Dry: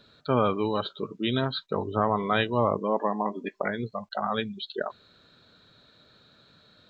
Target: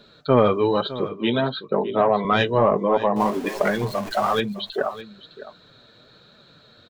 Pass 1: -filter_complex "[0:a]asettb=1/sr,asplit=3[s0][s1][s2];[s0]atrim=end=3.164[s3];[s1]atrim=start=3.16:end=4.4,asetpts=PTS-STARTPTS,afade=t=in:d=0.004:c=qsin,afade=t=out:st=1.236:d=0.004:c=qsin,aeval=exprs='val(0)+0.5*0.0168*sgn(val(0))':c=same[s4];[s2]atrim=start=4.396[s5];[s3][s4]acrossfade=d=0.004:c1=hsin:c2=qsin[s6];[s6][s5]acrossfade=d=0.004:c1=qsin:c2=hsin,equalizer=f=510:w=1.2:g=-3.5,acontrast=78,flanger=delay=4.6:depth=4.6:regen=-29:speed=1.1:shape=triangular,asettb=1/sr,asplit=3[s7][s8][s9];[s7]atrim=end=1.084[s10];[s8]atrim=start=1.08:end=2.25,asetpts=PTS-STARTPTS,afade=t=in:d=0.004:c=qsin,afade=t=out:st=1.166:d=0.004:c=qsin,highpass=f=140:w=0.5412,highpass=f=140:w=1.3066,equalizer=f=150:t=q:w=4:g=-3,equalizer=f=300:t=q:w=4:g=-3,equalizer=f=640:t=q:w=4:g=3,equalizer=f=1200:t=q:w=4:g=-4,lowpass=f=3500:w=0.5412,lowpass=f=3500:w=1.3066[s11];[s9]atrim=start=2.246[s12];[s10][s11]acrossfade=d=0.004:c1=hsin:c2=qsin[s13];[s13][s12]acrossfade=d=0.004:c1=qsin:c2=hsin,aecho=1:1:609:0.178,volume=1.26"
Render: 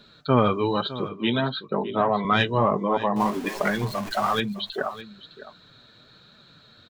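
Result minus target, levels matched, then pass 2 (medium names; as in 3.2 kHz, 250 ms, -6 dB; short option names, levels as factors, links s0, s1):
500 Hz band -2.5 dB
-filter_complex "[0:a]asettb=1/sr,asplit=3[s0][s1][s2];[s0]atrim=end=3.164[s3];[s1]atrim=start=3.16:end=4.4,asetpts=PTS-STARTPTS,afade=t=in:d=0.004:c=qsin,afade=t=out:st=1.236:d=0.004:c=qsin,aeval=exprs='val(0)+0.5*0.0168*sgn(val(0))':c=same[s4];[s2]atrim=start=4.396[s5];[s3][s4]acrossfade=d=0.004:c1=hsin:c2=qsin[s6];[s6][s5]acrossfade=d=0.004:c1=qsin:c2=hsin,equalizer=f=510:w=1.2:g=3,acontrast=78,flanger=delay=4.6:depth=4.6:regen=-29:speed=1.1:shape=triangular,asettb=1/sr,asplit=3[s7][s8][s9];[s7]atrim=end=1.084[s10];[s8]atrim=start=1.08:end=2.25,asetpts=PTS-STARTPTS,afade=t=in:d=0.004:c=qsin,afade=t=out:st=1.166:d=0.004:c=qsin,highpass=f=140:w=0.5412,highpass=f=140:w=1.3066,equalizer=f=150:t=q:w=4:g=-3,equalizer=f=300:t=q:w=4:g=-3,equalizer=f=640:t=q:w=4:g=3,equalizer=f=1200:t=q:w=4:g=-4,lowpass=f=3500:w=0.5412,lowpass=f=3500:w=1.3066[s11];[s9]atrim=start=2.246[s12];[s10][s11]acrossfade=d=0.004:c1=hsin:c2=qsin[s13];[s13][s12]acrossfade=d=0.004:c1=qsin:c2=hsin,aecho=1:1:609:0.178,volume=1.26"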